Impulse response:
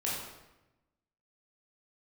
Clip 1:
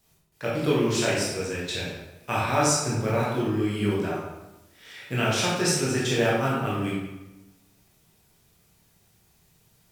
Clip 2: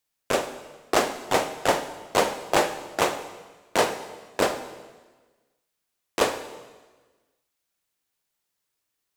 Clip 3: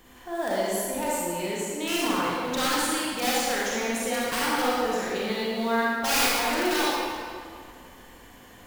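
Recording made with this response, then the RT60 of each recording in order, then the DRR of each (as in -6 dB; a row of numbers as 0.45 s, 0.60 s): 1; 1.0 s, 1.3 s, 2.2 s; -6.5 dB, 9.0 dB, -7.0 dB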